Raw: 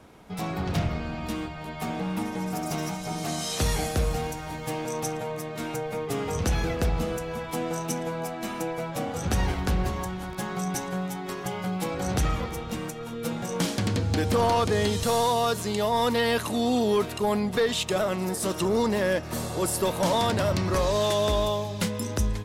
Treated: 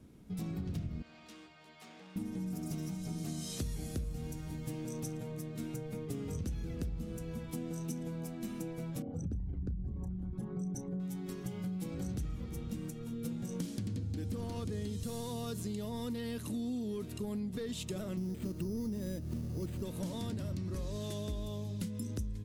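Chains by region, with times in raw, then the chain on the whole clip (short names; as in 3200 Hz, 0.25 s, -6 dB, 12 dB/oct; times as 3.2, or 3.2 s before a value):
1.02–2.16 HPF 230 Hz 6 dB/oct + three-band isolator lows -19 dB, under 530 Hz, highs -14 dB, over 7500 Hz + core saturation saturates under 1800 Hz
9.02–11 formant sharpening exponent 2 + doubler 31 ms -12.5 dB
18.17–19.83 tilt -2 dB/oct + careless resampling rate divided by 8×, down none, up hold
whole clip: EQ curve 260 Hz 0 dB, 790 Hz -19 dB, 10000 Hz -6 dB; compressor, threshold -33 dBFS; gain -2 dB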